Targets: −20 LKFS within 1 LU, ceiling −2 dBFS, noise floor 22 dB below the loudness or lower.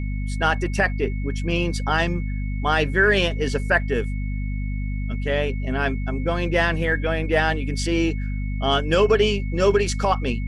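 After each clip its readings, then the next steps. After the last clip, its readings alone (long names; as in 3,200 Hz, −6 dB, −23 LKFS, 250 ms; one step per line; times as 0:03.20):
mains hum 50 Hz; hum harmonics up to 250 Hz; level of the hum −23 dBFS; interfering tone 2,200 Hz; level of the tone −41 dBFS; integrated loudness −22.5 LKFS; sample peak −5.0 dBFS; target loudness −20.0 LKFS
→ hum removal 50 Hz, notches 5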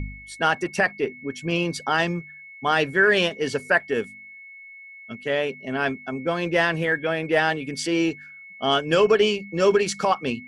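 mains hum none found; interfering tone 2,200 Hz; level of the tone −41 dBFS
→ notch filter 2,200 Hz, Q 30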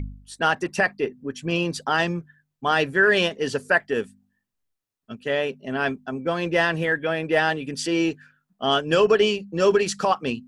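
interfering tone none found; integrated loudness −23.0 LKFS; sample peak −6.5 dBFS; target loudness −20.0 LKFS
→ level +3 dB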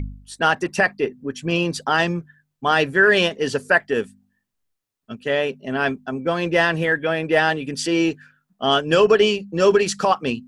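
integrated loudness −20.0 LKFS; sample peak −3.5 dBFS; background noise floor −77 dBFS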